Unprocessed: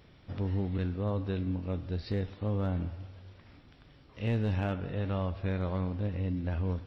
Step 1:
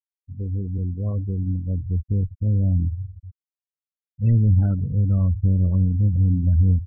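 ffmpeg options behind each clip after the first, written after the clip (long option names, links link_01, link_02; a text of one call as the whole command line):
ffmpeg -i in.wav -af "afftfilt=real='re*gte(hypot(re,im),0.0447)':imag='im*gte(hypot(re,im),0.0447)':win_size=1024:overlap=0.75,asubboost=boost=8:cutoff=190" out.wav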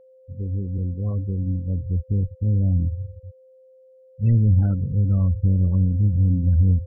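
ffmpeg -i in.wav -af "bandreject=frequency=630:width=16,aeval=exprs='val(0)+0.00355*sin(2*PI*520*n/s)':channel_layout=same" out.wav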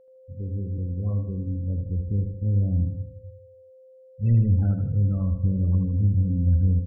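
ffmpeg -i in.wav -af "aecho=1:1:79|158|237|316|395:0.473|0.218|0.1|0.0461|0.0212,volume=-3.5dB" out.wav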